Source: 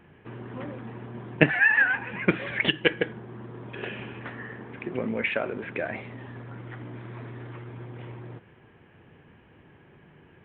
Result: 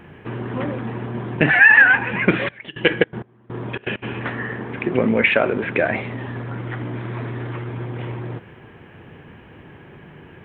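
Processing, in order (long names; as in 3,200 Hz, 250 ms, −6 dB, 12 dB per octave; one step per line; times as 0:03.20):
0:02.44–0:04.02: gate pattern "x.x...xx" 163 BPM −24 dB
boost into a limiter +12.5 dB
level −1 dB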